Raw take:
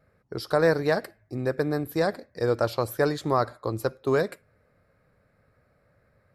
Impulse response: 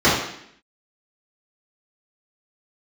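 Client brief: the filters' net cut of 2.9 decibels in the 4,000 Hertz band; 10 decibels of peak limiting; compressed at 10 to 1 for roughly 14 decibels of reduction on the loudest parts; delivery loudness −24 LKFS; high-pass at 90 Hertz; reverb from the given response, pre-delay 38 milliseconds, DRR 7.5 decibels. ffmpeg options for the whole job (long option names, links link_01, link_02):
-filter_complex "[0:a]highpass=90,equalizer=frequency=4000:width_type=o:gain=-3.5,acompressor=threshold=-32dB:ratio=10,alimiter=level_in=3dB:limit=-24dB:level=0:latency=1,volume=-3dB,asplit=2[link_01][link_02];[1:a]atrim=start_sample=2205,adelay=38[link_03];[link_02][link_03]afir=irnorm=-1:irlink=0,volume=-31.5dB[link_04];[link_01][link_04]amix=inputs=2:normalize=0,volume=15dB"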